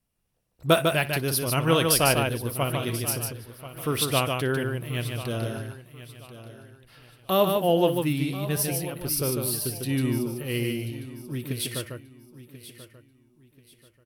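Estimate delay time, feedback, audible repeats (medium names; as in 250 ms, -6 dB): 59 ms, no regular repeats, 7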